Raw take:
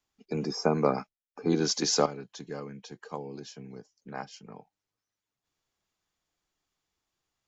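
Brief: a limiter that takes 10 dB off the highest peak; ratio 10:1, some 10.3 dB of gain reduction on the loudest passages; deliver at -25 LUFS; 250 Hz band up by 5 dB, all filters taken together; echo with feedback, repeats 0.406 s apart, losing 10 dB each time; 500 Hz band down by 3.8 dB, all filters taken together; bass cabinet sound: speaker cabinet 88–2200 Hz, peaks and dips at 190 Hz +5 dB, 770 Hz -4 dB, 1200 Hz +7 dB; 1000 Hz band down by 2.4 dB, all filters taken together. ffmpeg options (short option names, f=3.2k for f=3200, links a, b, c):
-af "equalizer=f=250:t=o:g=7,equalizer=f=500:t=o:g=-6,equalizer=f=1k:t=o:g=-5,acompressor=threshold=-30dB:ratio=10,alimiter=level_in=6dB:limit=-24dB:level=0:latency=1,volume=-6dB,highpass=f=88:w=0.5412,highpass=f=88:w=1.3066,equalizer=f=190:t=q:w=4:g=5,equalizer=f=770:t=q:w=4:g=-4,equalizer=f=1.2k:t=q:w=4:g=7,lowpass=f=2.2k:w=0.5412,lowpass=f=2.2k:w=1.3066,aecho=1:1:406|812|1218|1624:0.316|0.101|0.0324|0.0104,volume=16dB"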